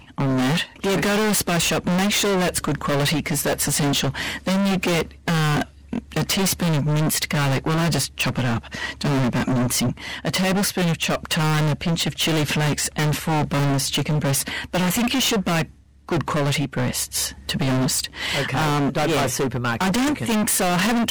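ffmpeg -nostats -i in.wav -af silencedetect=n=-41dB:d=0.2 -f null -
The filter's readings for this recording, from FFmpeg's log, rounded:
silence_start: 15.71
silence_end: 16.09 | silence_duration: 0.38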